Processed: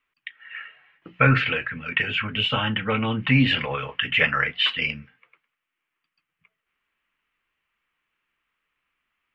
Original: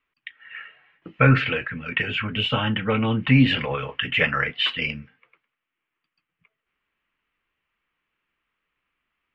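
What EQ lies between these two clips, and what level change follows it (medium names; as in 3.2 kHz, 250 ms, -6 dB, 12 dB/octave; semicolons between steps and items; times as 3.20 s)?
tone controls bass +5 dB, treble -2 dB; bass shelf 480 Hz -9.5 dB; hum notches 60/120/180 Hz; +2.0 dB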